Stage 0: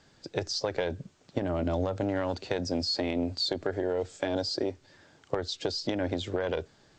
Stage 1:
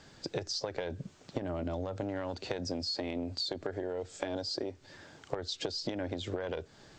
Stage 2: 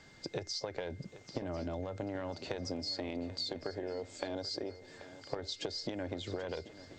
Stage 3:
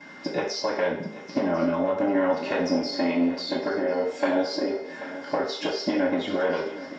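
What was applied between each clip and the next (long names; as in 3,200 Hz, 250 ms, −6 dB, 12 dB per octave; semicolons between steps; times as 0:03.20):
downward compressor 12 to 1, threshold −37 dBFS, peak gain reduction 14 dB; level +5 dB
steady tone 2,100 Hz −58 dBFS; feedback echo with a long and a short gap by turns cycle 1,046 ms, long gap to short 3 to 1, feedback 33%, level −15.5 dB; level −3 dB
convolution reverb RT60 0.60 s, pre-delay 3 ms, DRR −16 dB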